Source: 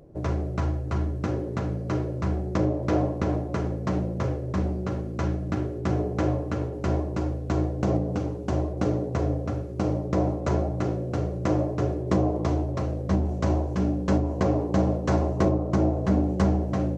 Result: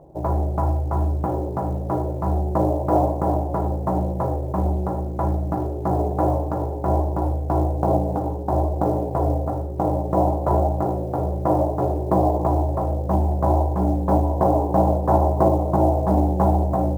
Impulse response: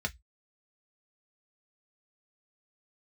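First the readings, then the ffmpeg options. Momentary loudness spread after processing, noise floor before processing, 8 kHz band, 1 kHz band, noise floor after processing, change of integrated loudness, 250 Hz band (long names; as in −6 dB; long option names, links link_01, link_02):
6 LU, −33 dBFS, can't be measured, +11.5 dB, −28 dBFS, +5.0 dB, +2.0 dB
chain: -filter_complex "[0:a]lowpass=frequency=860:width_type=q:width=4.9,acrusher=bits=8:mode=log:mix=0:aa=0.000001,asplit=2[link_01][link_02];[1:a]atrim=start_sample=2205[link_03];[link_02][link_03]afir=irnorm=-1:irlink=0,volume=-12.5dB[link_04];[link_01][link_04]amix=inputs=2:normalize=0"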